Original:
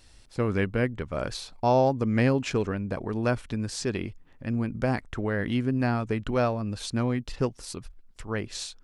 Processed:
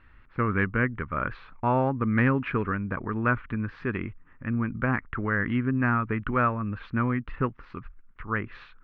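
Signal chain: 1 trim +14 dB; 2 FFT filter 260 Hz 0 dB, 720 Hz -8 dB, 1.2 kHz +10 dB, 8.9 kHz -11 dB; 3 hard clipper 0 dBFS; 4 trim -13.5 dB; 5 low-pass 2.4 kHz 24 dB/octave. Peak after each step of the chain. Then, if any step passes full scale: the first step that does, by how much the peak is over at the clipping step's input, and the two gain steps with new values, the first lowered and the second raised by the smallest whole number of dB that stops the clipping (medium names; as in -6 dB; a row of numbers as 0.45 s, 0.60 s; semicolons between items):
+3.5 dBFS, +3.5 dBFS, 0.0 dBFS, -13.5 dBFS, -13.0 dBFS; step 1, 3.5 dB; step 1 +10 dB, step 4 -9.5 dB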